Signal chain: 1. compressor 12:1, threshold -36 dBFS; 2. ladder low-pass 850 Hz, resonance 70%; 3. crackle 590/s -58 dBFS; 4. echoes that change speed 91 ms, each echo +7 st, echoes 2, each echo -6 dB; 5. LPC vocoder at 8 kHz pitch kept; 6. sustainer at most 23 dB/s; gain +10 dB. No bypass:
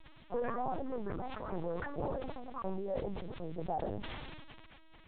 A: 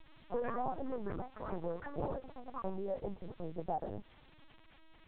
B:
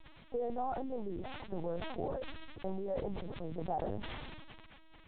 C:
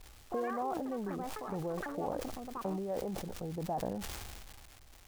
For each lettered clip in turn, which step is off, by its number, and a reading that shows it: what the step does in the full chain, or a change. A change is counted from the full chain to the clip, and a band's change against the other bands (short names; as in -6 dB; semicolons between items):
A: 6, momentary loudness spread change -4 LU; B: 4, 4 kHz band +3.0 dB; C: 5, 250 Hz band +2.0 dB